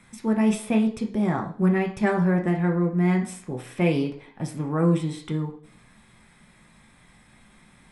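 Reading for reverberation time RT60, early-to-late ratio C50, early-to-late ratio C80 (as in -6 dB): 0.50 s, 10.0 dB, 14.0 dB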